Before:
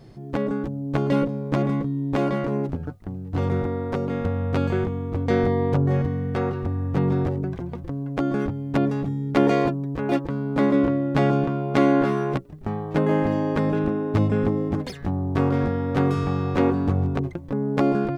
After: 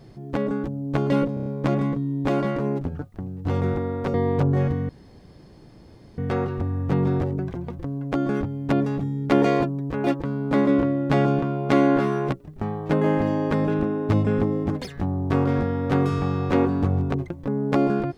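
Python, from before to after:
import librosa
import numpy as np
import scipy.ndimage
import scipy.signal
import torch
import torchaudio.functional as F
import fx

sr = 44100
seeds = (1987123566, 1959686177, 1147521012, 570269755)

y = fx.edit(x, sr, fx.stutter(start_s=1.34, slice_s=0.03, count=5),
    fx.cut(start_s=4.02, length_s=1.46),
    fx.insert_room_tone(at_s=6.23, length_s=1.29), tone=tone)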